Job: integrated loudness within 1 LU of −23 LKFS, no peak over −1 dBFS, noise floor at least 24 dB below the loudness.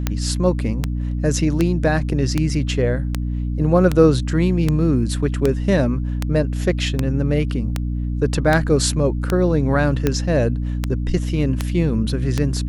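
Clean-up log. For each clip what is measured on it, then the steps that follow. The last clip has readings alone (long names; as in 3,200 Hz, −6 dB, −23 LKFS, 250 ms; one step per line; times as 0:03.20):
number of clicks 17; mains hum 60 Hz; hum harmonics up to 300 Hz; level of the hum −20 dBFS; integrated loudness −19.5 LKFS; sample peak −1.0 dBFS; target loudness −23.0 LKFS
→ click removal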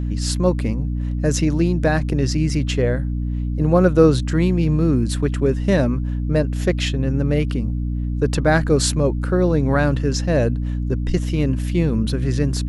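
number of clicks 0; mains hum 60 Hz; hum harmonics up to 300 Hz; level of the hum −20 dBFS
→ mains-hum notches 60/120/180/240/300 Hz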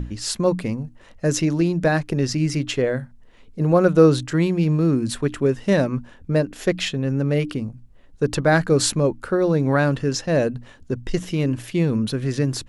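mains hum none found; integrated loudness −21.0 LKFS; sample peak −2.5 dBFS; target loudness −23.0 LKFS
→ level −2 dB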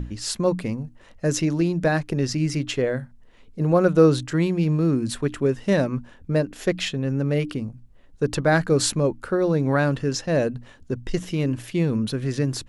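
integrated loudness −23.0 LKFS; sample peak −4.5 dBFS; background noise floor −50 dBFS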